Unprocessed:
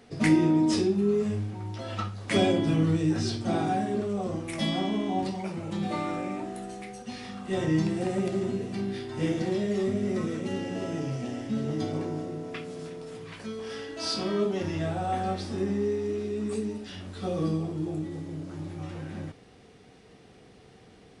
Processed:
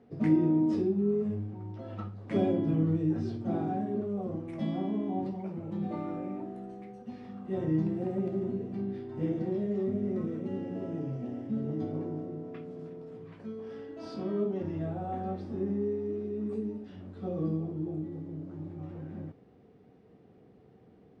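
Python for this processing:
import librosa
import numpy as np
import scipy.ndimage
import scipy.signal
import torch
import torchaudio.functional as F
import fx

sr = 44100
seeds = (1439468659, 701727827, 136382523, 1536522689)

y = fx.bandpass_q(x, sr, hz=230.0, q=0.51)
y = y * librosa.db_to_amplitude(-2.5)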